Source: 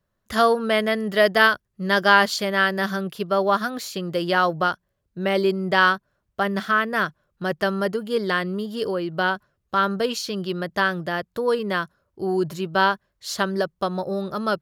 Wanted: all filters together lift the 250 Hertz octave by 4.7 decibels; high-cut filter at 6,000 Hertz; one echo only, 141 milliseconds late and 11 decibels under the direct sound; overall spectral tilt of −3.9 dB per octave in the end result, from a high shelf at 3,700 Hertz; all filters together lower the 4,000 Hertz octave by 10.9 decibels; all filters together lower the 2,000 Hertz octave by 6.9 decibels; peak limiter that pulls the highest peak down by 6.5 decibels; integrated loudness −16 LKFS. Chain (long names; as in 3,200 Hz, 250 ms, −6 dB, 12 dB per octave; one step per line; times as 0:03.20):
low-pass filter 6,000 Hz
parametric band 250 Hz +7 dB
parametric band 2,000 Hz −7.5 dB
high-shelf EQ 3,700 Hz −5 dB
parametric band 4,000 Hz −8 dB
brickwall limiter −12.5 dBFS
single-tap delay 141 ms −11 dB
level +7.5 dB